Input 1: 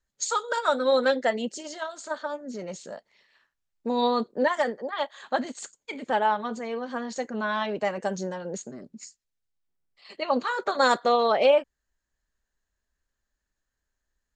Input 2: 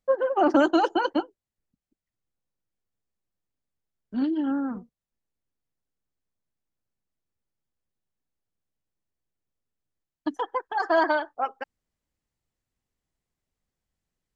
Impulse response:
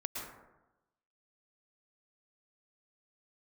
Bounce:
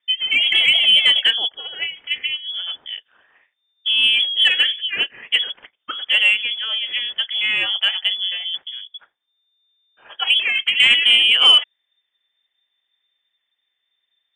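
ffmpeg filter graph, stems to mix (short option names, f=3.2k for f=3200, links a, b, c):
-filter_complex "[0:a]volume=2.5dB[a];[1:a]volume=-4dB[b];[a][b]amix=inputs=2:normalize=0,lowpass=f=3.1k:t=q:w=0.5098,lowpass=f=3.1k:t=q:w=0.6013,lowpass=f=3.1k:t=q:w=0.9,lowpass=f=3.1k:t=q:w=2.563,afreqshift=-3600,lowshelf=f=110:g=-6.5,acontrast=42"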